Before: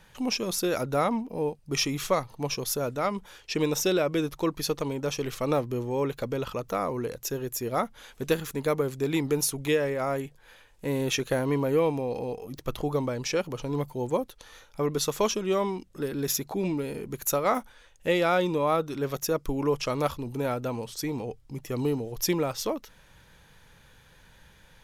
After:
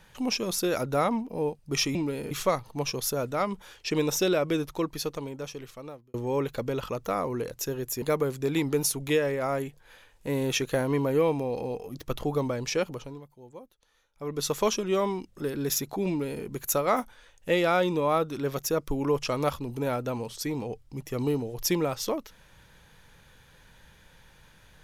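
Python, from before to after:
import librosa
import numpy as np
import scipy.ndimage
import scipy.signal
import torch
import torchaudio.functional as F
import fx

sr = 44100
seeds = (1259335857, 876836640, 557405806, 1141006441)

y = fx.edit(x, sr, fx.fade_out_span(start_s=4.15, length_s=1.63),
    fx.cut(start_s=7.66, length_s=0.94),
    fx.fade_down_up(start_s=13.41, length_s=1.68, db=-18.5, fade_s=0.38),
    fx.duplicate(start_s=16.66, length_s=0.36, to_s=1.95), tone=tone)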